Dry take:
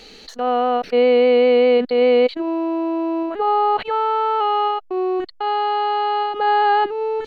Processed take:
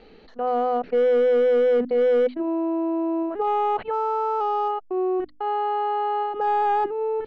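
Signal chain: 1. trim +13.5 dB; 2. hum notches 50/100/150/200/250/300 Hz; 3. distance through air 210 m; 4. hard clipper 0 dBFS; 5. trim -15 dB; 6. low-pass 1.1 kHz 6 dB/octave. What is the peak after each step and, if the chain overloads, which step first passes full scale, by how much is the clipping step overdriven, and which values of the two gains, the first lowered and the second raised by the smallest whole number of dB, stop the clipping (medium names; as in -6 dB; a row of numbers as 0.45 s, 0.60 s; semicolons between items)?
+7.0 dBFS, +7.0 dBFS, +6.0 dBFS, 0.0 dBFS, -15.0 dBFS, -15.0 dBFS; step 1, 6.0 dB; step 1 +7.5 dB, step 5 -9 dB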